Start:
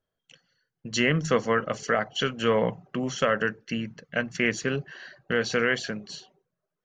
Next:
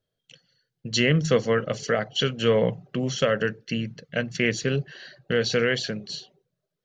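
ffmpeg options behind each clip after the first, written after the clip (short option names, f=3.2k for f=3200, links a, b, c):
-af "equalizer=f=125:t=o:w=1:g=8,equalizer=f=500:t=o:w=1:g=5,equalizer=f=1k:t=o:w=1:g=-6,equalizer=f=4k:t=o:w=1:g=8,volume=-1dB"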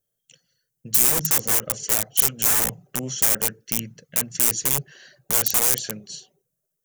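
-af "aeval=exprs='(mod(8.41*val(0)+1,2)-1)/8.41':c=same,aexciter=amount=6.8:drive=4.7:freq=6.1k,volume=-4.5dB"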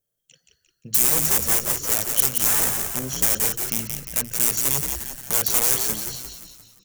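-filter_complex "[0:a]asplit=7[a][b][c][d][e][f][g];[b]adelay=175,afreqshift=-81,volume=-5dB[h];[c]adelay=350,afreqshift=-162,volume=-11dB[i];[d]adelay=525,afreqshift=-243,volume=-17dB[j];[e]adelay=700,afreqshift=-324,volume=-23.1dB[k];[f]adelay=875,afreqshift=-405,volume=-29.1dB[l];[g]adelay=1050,afreqshift=-486,volume=-35.1dB[m];[a][h][i][j][k][l][m]amix=inputs=7:normalize=0,volume=-1dB"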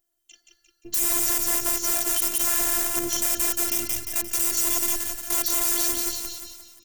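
-af "afftfilt=real='hypot(re,im)*cos(PI*b)':imag='0':win_size=512:overlap=0.75,alimiter=level_in=7.5dB:limit=-1dB:release=50:level=0:latency=1,volume=-1dB"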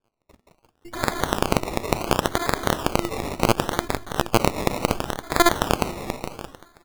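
-af "acrusher=samples=22:mix=1:aa=0.000001:lfo=1:lforange=13.2:lforate=0.7"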